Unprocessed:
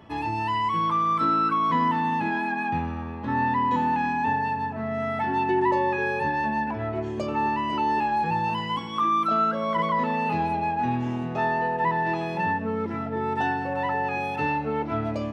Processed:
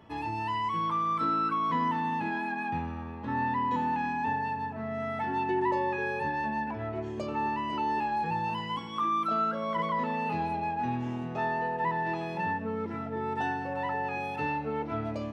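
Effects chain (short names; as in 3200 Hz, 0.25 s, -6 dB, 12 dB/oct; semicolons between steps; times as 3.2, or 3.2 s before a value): resonator 460 Hz, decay 0.51 s, mix 70%; gain +4.5 dB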